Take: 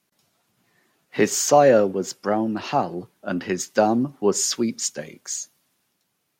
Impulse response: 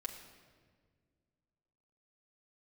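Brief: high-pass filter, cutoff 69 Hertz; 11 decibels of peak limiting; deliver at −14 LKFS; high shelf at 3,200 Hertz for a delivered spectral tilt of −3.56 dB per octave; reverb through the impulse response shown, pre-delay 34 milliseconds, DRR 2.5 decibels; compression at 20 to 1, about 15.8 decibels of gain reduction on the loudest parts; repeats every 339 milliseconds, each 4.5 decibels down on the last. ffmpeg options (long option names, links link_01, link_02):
-filter_complex "[0:a]highpass=69,highshelf=frequency=3200:gain=-6.5,acompressor=threshold=-26dB:ratio=20,alimiter=limit=-23.5dB:level=0:latency=1,aecho=1:1:339|678|1017|1356|1695|2034|2373|2712|3051:0.596|0.357|0.214|0.129|0.0772|0.0463|0.0278|0.0167|0.01,asplit=2[link_01][link_02];[1:a]atrim=start_sample=2205,adelay=34[link_03];[link_02][link_03]afir=irnorm=-1:irlink=0,volume=-1dB[link_04];[link_01][link_04]amix=inputs=2:normalize=0,volume=16.5dB"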